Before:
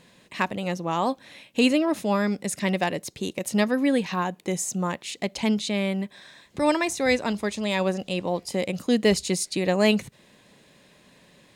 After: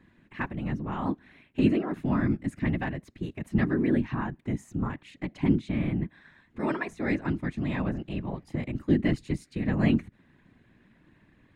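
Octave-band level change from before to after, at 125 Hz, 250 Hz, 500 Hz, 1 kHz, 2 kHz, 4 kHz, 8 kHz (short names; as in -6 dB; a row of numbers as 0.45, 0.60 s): +3.5 dB, -2.0 dB, -10.0 dB, -9.0 dB, -7.0 dB, -16.5 dB, under -20 dB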